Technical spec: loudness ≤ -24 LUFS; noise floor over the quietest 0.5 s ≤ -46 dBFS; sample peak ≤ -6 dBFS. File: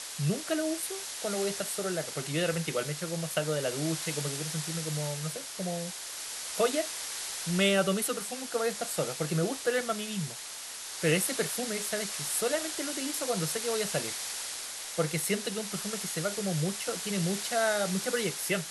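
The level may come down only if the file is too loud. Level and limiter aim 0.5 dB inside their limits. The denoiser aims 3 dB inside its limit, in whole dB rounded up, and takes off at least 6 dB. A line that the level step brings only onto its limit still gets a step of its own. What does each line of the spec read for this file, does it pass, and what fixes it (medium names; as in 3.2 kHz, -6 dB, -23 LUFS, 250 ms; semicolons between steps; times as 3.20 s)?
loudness -31.0 LUFS: pass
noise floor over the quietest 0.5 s -42 dBFS: fail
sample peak -13.5 dBFS: pass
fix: noise reduction 7 dB, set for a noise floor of -42 dBFS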